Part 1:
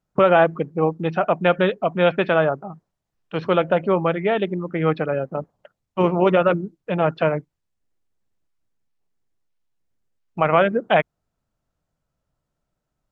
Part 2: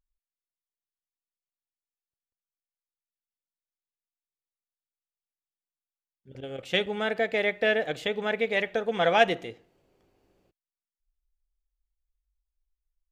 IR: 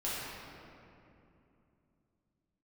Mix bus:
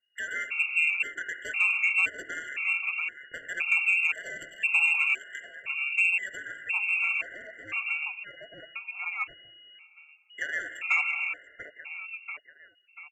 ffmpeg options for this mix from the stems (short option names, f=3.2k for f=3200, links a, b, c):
-filter_complex "[0:a]lowshelf=f=400:g=8.5,acompressor=threshold=-19dB:ratio=6,volume=-3.5dB,asplit=3[a][b][c];[b]volume=-10.5dB[d];[c]volume=-6dB[e];[1:a]volume=-11.5dB,asplit=3[f][g][h];[g]volume=-22.5dB[i];[h]apad=whole_len=578519[j];[a][j]sidechaincompress=threshold=-53dB:ratio=4:attack=25:release=356[k];[2:a]atrim=start_sample=2205[l];[d][i]amix=inputs=2:normalize=0[m];[m][l]afir=irnorm=-1:irlink=0[n];[e]aecho=0:1:689|1378|2067|2756|3445|4134:1|0.43|0.185|0.0795|0.0342|0.0147[o];[k][f][n][o]amix=inputs=4:normalize=0,lowpass=f=2.5k:t=q:w=0.5098,lowpass=f=2.5k:t=q:w=0.6013,lowpass=f=2.5k:t=q:w=0.9,lowpass=f=2.5k:t=q:w=2.563,afreqshift=-2900,asoftclip=type=tanh:threshold=-13.5dB,afftfilt=real='re*gt(sin(2*PI*0.97*pts/sr)*(1-2*mod(floor(b*sr/1024/700),2)),0)':imag='im*gt(sin(2*PI*0.97*pts/sr)*(1-2*mod(floor(b*sr/1024/700),2)),0)':win_size=1024:overlap=0.75"